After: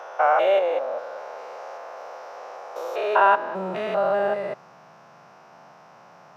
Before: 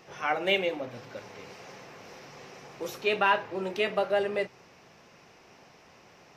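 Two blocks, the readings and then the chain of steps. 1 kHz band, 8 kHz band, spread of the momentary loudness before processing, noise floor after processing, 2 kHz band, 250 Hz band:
+9.5 dB, can't be measured, 21 LU, −50 dBFS, +2.0 dB, 0.0 dB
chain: spectrum averaged block by block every 200 ms
high-pass filter sweep 510 Hz → 150 Hz, 0:03.01–0:03.75
flat-topped bell 950 Hz +12 dB
level −1 dB

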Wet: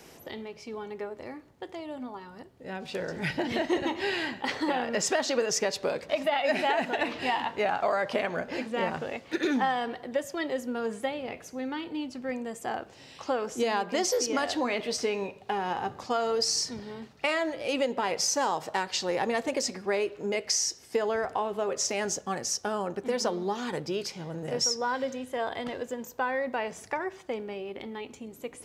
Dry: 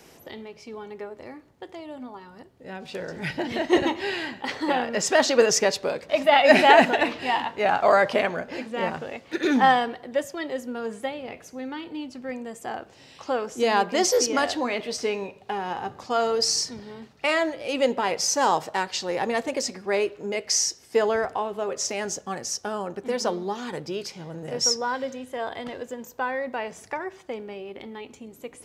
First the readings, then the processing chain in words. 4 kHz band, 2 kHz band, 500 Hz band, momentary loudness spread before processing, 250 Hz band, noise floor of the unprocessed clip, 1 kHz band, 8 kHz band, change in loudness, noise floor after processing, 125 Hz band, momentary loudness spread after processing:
−4.5 dB, −6.0 dB, −5.0 dB, 20 LU, −4.0 dB, −52 dBFS, −6.5 dB, −3.5 dB, −6.0 dB, −52 dBFS, −2.0 dB, 13 LU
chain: downward compressor 6 to 1, threshold −24 dBFS, peak gain reduction 14 dB

